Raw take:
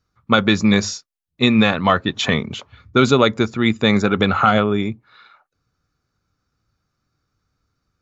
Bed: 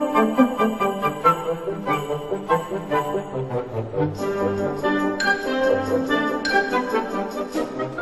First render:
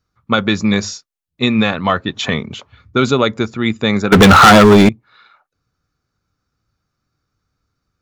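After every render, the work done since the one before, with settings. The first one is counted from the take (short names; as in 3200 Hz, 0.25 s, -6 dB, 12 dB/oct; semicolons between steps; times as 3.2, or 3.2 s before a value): 4.12–4.89 sample leveller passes 5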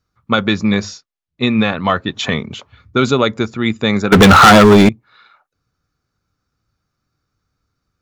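0.54–1.8 air absorption 84 m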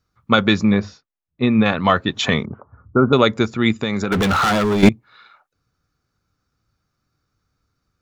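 0.65–1.66 tape spacing loss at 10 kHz 27 dB; 2.45–3.13 steep low-pass 1400 Hz 48 dB/oct; 3.72–4.83 compressor 10:1, threshold -16 dBFS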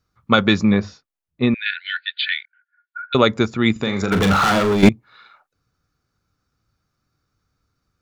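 1.54–3.15 brick-wall FIR band-pass 1400–4800 Hz; 3.72–4.72 flutter echo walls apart 7 m, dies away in 0.32 s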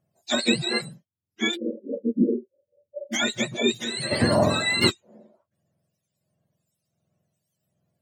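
spectrum mirrored in octaves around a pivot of 910 Hz; harmonic tremolo 1.4 Hz, depth 70%, crossover 2300 Hz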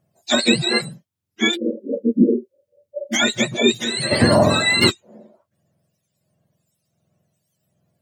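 gain +6.5 dB; limiter -3 dBFS, peak gain reduction 3 dB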